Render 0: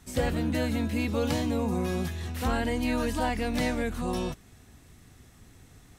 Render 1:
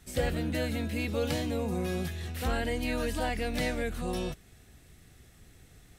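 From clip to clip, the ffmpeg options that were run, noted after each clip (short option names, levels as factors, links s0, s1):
-af "equalizer=f=100:t=o:w=0.67:g=-4,equalizer=f=250:t=o:w=0.67:g=-6,equalizer=f=1000:t=o:w=0.67:g=-8,equalizer=f=6300:t=o:w=0.67:g=-3"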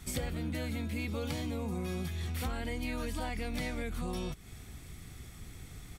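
-af "aecho=1:1:0.9:0.35,acompressor=threshold=0.01:ratio=5,volume=2"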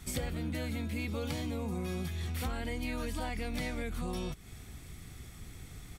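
-af anull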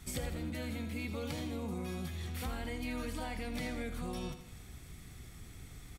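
-af "aecho=1:1:81|162|243|324|405:0.299|0.149|0.0746|0.0373|0.0187,volume=0.708"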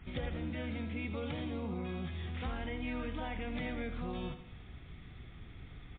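-af "volume=1.12" -ar 8000 -c:a libmp3lame -b:a 24k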